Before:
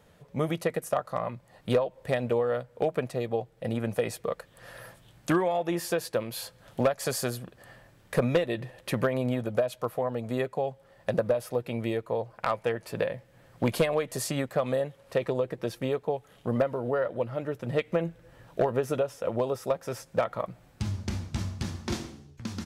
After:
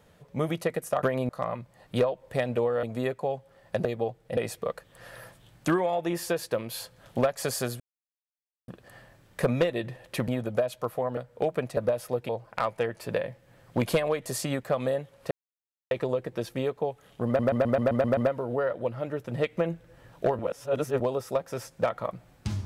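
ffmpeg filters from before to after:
-filter_complex "[0:a]asplit=21[s0][s1][s2][s3][s4][s5][s6][s7][s8][s9][s10][s11][s12][s13][s14][s15][s16][s17][s18][s19][s20];[s0]atrim=end=1.032[s21];[s1]atrim=start=9.018:end=9.282[s22];[s2]atrim=start=1.028:end=2.572[s23];[s3]atrim=start=10.168:end=11.192[s24];[s4]atrim=start=3.168:end=3.692[s25];[s5]atrim=start=3.988:end=7.42,asetpts=PTS-STARTPTS,afade=t=out:st=3.428:d=0.004:c=hsin,apad=pad_dur=0.88[s26];[s6]atrim=start=7.42:end=9.022,asetpts=PTS-STARTPTS,afade=t=in:d=0.004:c=hsin[s27];[s7]atrim=start=9.278:end=10.172[s28];[s8]atrim=start=2.568:end=3.172[s29];[s9]atrim=start=11.188:end=11.712[s30];[s10]atrim=start=12.148:end=15.17,asetpts=PTS-STARTPTS,afade=t=out:st=3.018:d=0.004:c=hsin,apad=pad_dur=0.6[s31];[s11]atrim=start=15.17:end=16.652,asetpts=PTS-STARTPTS,afade=t=in:d=0.004:c=hsin[s32];[s12]atrim=start=16.518:end=16.652[s33];[s13]atrim=start=16.518:end=16.652[s34];[s14]atrim=start=16.518:end=16.652[s35];[s15]atrim=start=16.518:end=16.652[s36];[s16]atrim=start=16.518:end=16.652[s37];[s17]atrim=start=16.518:end=16.652[s38];[s18]atrim=start=16.518:end=18.742[s39];[s19]atrim=start=18.738:end=19.352,asetpts=PTS-STARTPTS,areverse[s40];[s20]atrim=start=19.348[s41];[s21][s22]acrossfade=d=0.004:c1=hsin:c2=hsin[s42];[s42][s23]acrossfade=d=0.004:c1=hsin:c2=hsin[s43];[s43][s24]acrossfade=d=0.004:c1=hsin:c2=hsin[s44];[s44][s25]acrossfade=d=0.004:c1=hsin:c2=hsin[s45];[s26][s27]concat=n=2:v=0:a=1[s46];[s45][s46]acrossfade=d=0.004:c1=hsin:c2=hsin[s47];[s47][s28]acrossfade=d=0.004:c1=hsin:c2=hsin[s48];[s48][s29]acrossfade=d=0.004:c1=hsin:c2=hsin[s49];[s49][s30]acrossfade=d=0.004:c1=hsin:c2=hsin[s50];[s31][s32]concat=n=2:v=0:a=1[s51];[s50][s51]acrossfade=d=0.004:c1=hsin:c2=hsin[s52];[s52][s33]acrossfade=d=0.004:c1=hsin:c2=hsin[s53];[s53][s34]acrossfade=d=0.004:c1=hsin:c2=hsin[s54];[s54][s35]acrossfade=d=0.004:c1=hsin:c2=hsin[s55];[s55][s36]acrossfade=d=0.004:c1=hsin:c2=hsin[s56];[s56][s37]acrossfade=d=0.004:c1=hsin:c2=hsin[s57];[s57][s38]acrossfade=d=0.004:c1=hsin:c2=hsin[s58];[s58][s39]acrossfade=d=0.004:c1=hsin:c2=hsin[s59];[s59][s40]acrossfade=d=0.004:c1=hsin:c2=hsin[s60];[s60][s41]acrossfade=d=0.004:c1=hsin:c2=hsin"

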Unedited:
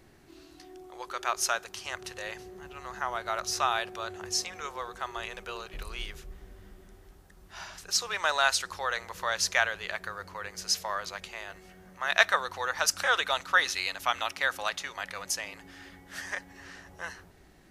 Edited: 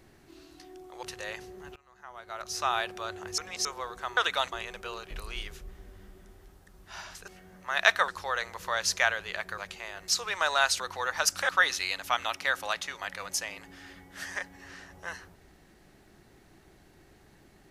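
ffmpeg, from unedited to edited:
-filter_complex "[0:a]asplit=13[s0][s1][s2][s3][s4][s5][s6][s7][s8][s9][s10][s11][s12];[s0]atrim=end=1.032[s13];[s1]atrim=start=2.008:end=2.74,asetpts=PTS-STARTPTS,afade=t=out:st=0.728:d=0.004:c=hsin:silence=0.0944061[s14];[s2]atrim=start=2.74:end=4.362,asetpts=PTS-STARTPTS,afade=t=in:d=1:c=qua:silence=0.0944061[s15];[s3]atrim=start=4.358:end=4.632,asetpts=PTS-STARTPTS,areverse[s16];[s4]atrim=start=4.628:end=5.152[s17];[s5]atrim=start=13.098:end=13.452[s18];[s6]atrim=start=5.148:end=7.912[s19];[s7]atrim=start=11.608:end=12.412[s20];[s8]atrim=start=8.628:end=10.132[s21];[s9]atrim=start=11.108:end=11.612[s22];[s10]atrim=start=7.908:end=8.632[s23];[s11]atrim=start=12.408:end=13.102[s24];[s12]atrim=start=13.448[s25];[s14][s15]concat=n=2:v=0:a=1[s26];[s13][s26]acrossfade=d=0.004:c1=hsin:c2=hsin[s27];[s27][s16]acrossfade=d=0.004:c1=hsin:c2=hsin[s28];[s28][s17]acrossfade=d=0.004:c1=hsin:c2=hsin[s29];[s29][s18]acrossfade=d=0.004:c1=hsin:c2=hsin[s30];[s30][s19]acrossfade=d=0.004:c1=hsin:c2=hsin[s31];[s31][s20]acrossfade=d=0.004:c1=hsin:c2=hsin[s32];[s32][s21]acrossfade=d=0.004:c1=hsin:c2=hsin[s33];[s33][s22]acrossfade=d=0.004:c1=hsin:c2=hsin[s34];[s34][s23]acrossfade=d=0.004:c1=hsin:c2=hsin[s35];[s35][s24]acrossfade=d=0.004:c1=hsin:c2=hsin[s36];[s36][s25]acrossfade=d=0.004:c1=hsin:c2=hsin"

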